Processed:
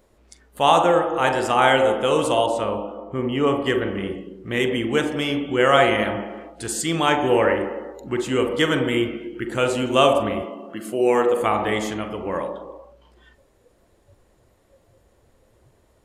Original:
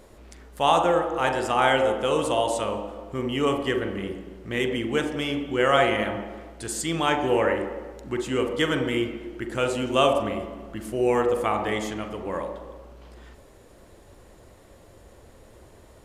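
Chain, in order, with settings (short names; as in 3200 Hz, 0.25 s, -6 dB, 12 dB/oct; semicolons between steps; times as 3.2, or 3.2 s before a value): 10.43–11.41 HPF 200 Hz 12 dB/oct; spectral noise reduction 13 dB; 2.46–3.66 high shelf 3500 Hz -11.5 dB; gain +4 dB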